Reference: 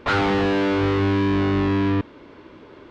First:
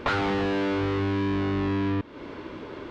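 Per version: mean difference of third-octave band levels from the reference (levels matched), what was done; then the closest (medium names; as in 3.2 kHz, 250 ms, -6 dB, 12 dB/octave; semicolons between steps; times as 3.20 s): 3.0 dB: compression 6:1, threshold -31 dBFS, peak gain reduction 12.5 dB; trim +6 dB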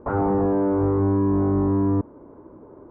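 6.5 dB: low-pass 1 kHz 24 dB/octave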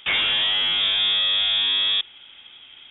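12.0 dB: frequency inversion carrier 3.6 kHz; trim -1.5 dB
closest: first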